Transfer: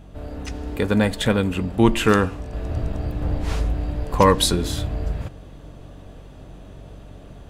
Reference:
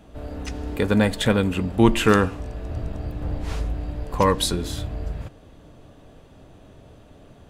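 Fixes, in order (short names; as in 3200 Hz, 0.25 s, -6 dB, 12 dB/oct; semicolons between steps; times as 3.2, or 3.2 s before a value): de-hum 46.8 Hz, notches 4; gain 0 dB, from 2.53 s -4 dB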